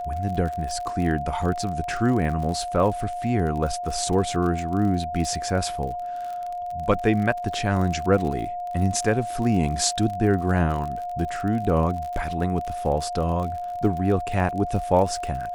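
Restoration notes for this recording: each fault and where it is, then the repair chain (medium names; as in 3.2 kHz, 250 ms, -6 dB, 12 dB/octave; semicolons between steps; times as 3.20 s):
crackle 45 per s -30 dBFS
whine 710 Hz -28 dBFS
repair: de-click; band-stop 710 Hz, Q 30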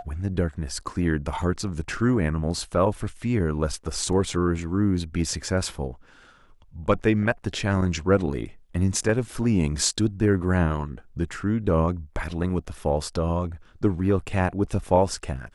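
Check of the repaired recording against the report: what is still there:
nothing left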